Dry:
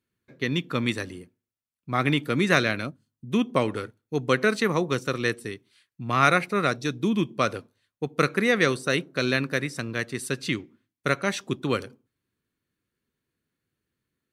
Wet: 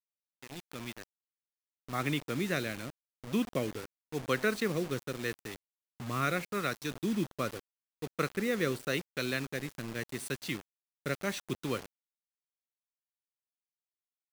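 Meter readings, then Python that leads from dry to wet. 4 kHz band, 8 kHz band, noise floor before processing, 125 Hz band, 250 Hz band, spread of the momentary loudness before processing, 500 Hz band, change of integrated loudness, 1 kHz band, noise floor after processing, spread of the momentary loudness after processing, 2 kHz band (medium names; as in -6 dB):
-9.5 dB, -6.0 dB, under -85 dBFS, -9.0 dB, -8.5 dB, 11 LU, -9.0 dB, -9.5 dB, -11.5 dB, under -85 dBFS, 14 LU, -10.5 dB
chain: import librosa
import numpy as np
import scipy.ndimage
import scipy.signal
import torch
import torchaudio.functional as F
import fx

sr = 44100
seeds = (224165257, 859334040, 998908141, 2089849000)

y = fx.fade_in_head(x, sr, length_s=2.6)
y = fx.rotary(y, sr, hz=0.85)
y = fx.quant_dither(y, sr, seeds[0], bits=6, dither='none')
y = y * 10.0 ** (-7.0 / 20.0)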